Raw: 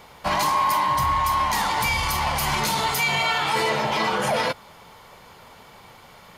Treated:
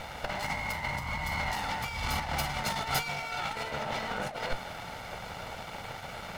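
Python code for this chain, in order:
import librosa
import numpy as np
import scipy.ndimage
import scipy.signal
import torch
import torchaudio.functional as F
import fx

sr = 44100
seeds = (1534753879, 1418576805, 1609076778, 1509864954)

y = fx.lower_of_two(x, sr, delay_ms=1.4)
y = fx.lowpass(y, sr, hz=3400.0, slope=6)
y = fx.over_compress(y, sr, threshold_db=-32.0, ratio=-0.5)
y = np.sign(y) * np.maximum(np.abs(y) - 10.0 ** (-52.0 / 20.0), 0.0)
y = y * librosa.db_to_amplitude(2.5)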